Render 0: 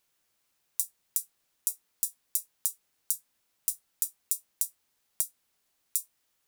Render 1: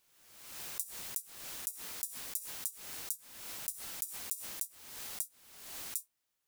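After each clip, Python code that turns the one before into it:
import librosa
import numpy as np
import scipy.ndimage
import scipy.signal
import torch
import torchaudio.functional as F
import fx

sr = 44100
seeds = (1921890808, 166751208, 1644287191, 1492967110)

y = fx.pre_swell(x, sr, db_per_s=50.0)
y = F.gain(torch.from_numpy(y), -8.5).numpy()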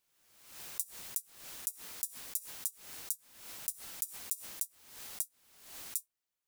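y = fx.upward_expand(x, sr, threshold_db=-52.0, expansion=1.5)
y = F.gain(torch.from_numpy(y), 2.0).numpy()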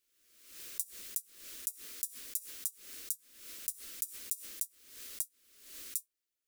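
y = fx.fixed_phaser(x, sr, hz=340.0, stages=4)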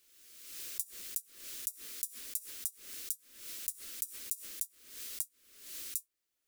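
y = fx.band_squash(x, sr, depth_pct=40)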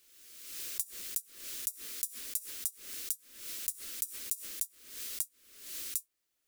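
y = 10.0 ** (-12.5 / 20.0) * np.tanh(x / 10.0 ** (-12.5 / 20.0))
y = F.gain(torch.from_numpy(y), 3.0).numpy()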